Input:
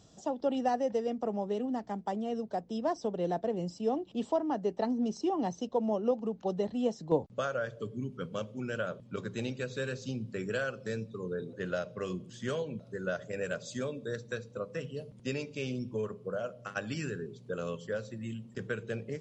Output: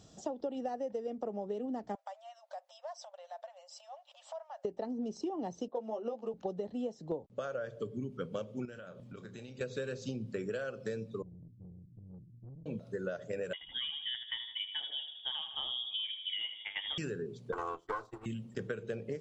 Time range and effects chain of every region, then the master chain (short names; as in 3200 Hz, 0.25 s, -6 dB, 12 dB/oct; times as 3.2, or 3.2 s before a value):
1.95–4.65 compressor, threshold -40 dBFS + brick-wall FIR high-pass 530 Hz
5.68–6.34 weighting filter A + low-pass opened by the level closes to 1000 Hz, open at -32 dBFS + doubler 13 ms -3.5 dB
8.65–9.61 compressor 10:1, threshold -45 dBFS + doubler 33 ms -11 dB
11.22–12.66 inverse Chebyshev low-pass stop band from 870 Hz, stop band 80 dB + tube stage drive 47 dB, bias 0.5
13.53–16.98 air absorption 250 m + feedback echo 79 ms, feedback 54%, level -12 dB + inverted band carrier 3500 Hz
17.52–18.26 minimum comb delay 2.6 ms + expander -40 dBFS + band shelf 1100 Hz +13.5 dB 1 oct
whole clip: notch 1000 Hz, Q 24; dynamic EQ 460 Hz, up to +6 dB, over -43 dBFS, Q 0.88; compressor 10:1, threshold -35 dBFS; gain +1 dB